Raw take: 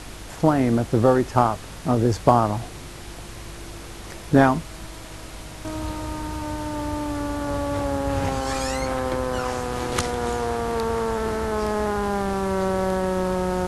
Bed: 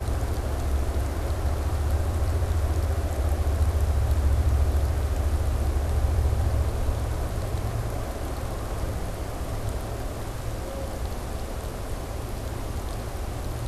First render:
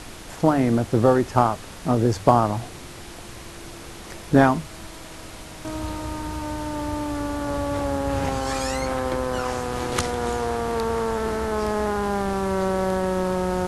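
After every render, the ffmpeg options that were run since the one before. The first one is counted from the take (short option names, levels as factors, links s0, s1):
-af "bandreject=f=50:t=h:w=4,bandreject=f=100:t=h:w=4,bandreject=f=150:t=h:w=4"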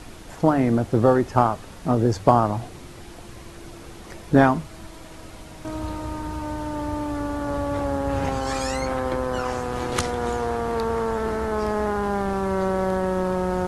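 -af "afftdn=nr=6:nf=-40"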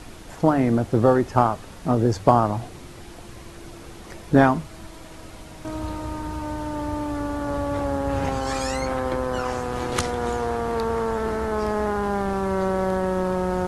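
-af anull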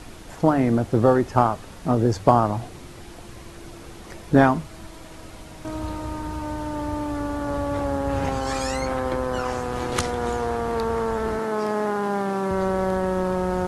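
-filter_complex "[0:a]asettb=1/sr,asplit=3[s0][s1][s2];[s0]atrim=end=11.394[s3];[s1]atrim=start=11.39:end=12.51,asetpts=PTS-STARTPTS,afade=t=in:d=0.004:c=qsin,afade=t=out:st=1.116:d=0.004:c=qsin,highpass=f=140:w=0.5412,highpass=f=140:w=1.3066[s4];[s2]atrim=start=12.506[s5];[s3][s4]acrossfade=d=0.004:c1=hsin:c2=qsin[s6];[s6][s5]acrossfade=d=0.004:c1=qsin:c2=hsin"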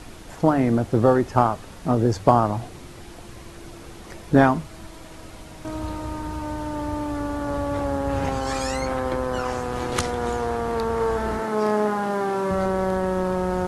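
-filter_complex "[0:a]asettb=1/sr,asplit=3[s0][s1][s2];[s0]atrim=end=10.974[s3];[s1]atrim=start=10.97:end=12.66,asetpts=PTS-STARTPTS,afade=t=in:d=0.004:c=qsin,afade=t=out:st=1.686:d=0.004:c=qsin,asplit=2[s4][s5];[s5]adelay=33,volume=0.562[s6];[s4][s6]amix=inputs=2:normalize=0,atrim=end_sample=74529[s7];[s2]atrim=start=12.656[s8];[s3][s7]acrossfade=d=0.004:c1=hsin:c2=qsin[s9];[s9][s8]acrossfade=d=0.004:c1=qsin:c2=hsin"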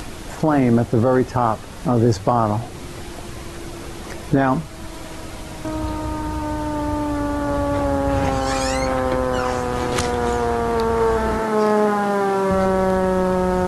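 -filter_complex "[0:a]asplit=2[s0][s1];[s1]acompressor=mode=upward:threshold=0.0501:ratio=2.5,volume=0.794[s2];[s0][s2]amix=inputs=2:normalize=0,alimiter=limit=0.473:level=0:latency=1:release=18"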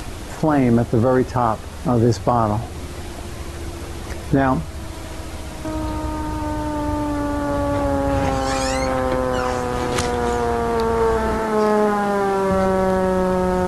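-filter_complex "[1:a]volume=0.299[s0];[0:a][s0]amix=inputs=2:normalize=0"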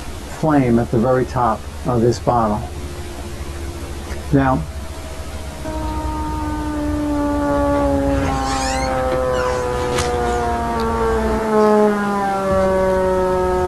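-filter_complex "[0:a]asplit=2[s0][s1];[s1]adelay=14,volume=0.708[s2];[s0][s2]amix=inputs=2:normalize=0"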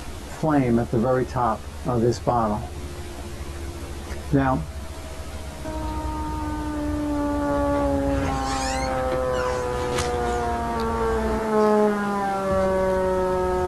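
-af "volume=0.531"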